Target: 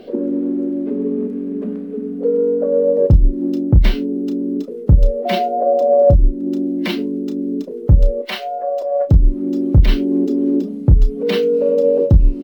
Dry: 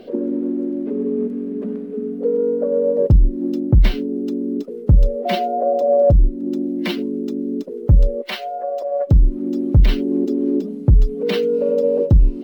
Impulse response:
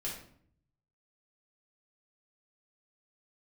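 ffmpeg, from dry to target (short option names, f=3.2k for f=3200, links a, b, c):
-filter_complex "[0:a]asplit=2[a][b];[b]adelay=32,volume=-9.5dB[c];[a][c]amix=inputs=2:normalize=0,volume=1.5dB"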